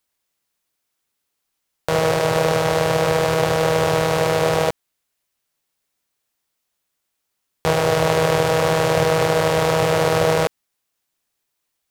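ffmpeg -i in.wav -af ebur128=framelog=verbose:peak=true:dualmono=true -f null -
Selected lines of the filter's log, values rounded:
Integrated loudness:
  I:         -15.5 LUFS
  Threshold: -25.6 LUFS
Loudness range:
  LRA:         7.9 LU
  Threshold: -37.5 LUFS
  LRA low:   -23.1 LUFS
  LRA high:  -15.2 LUFS
True peak:
  Peak:       -2.5 dBFS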